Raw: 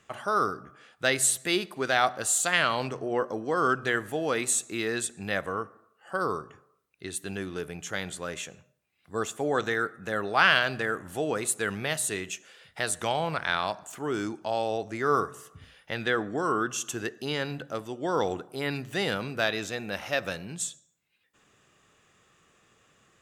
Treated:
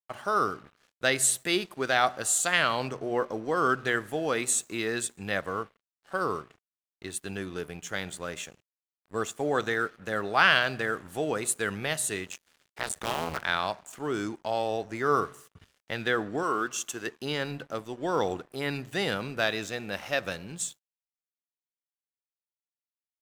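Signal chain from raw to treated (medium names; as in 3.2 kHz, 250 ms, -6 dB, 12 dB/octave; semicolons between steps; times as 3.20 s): 12.26–13.44 s: cycle switcher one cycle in 2, muted; 16.43–17.07 s: peaking EQ 63 Hz -14 dB 2.8 oct; crossover distortion -51 dBFS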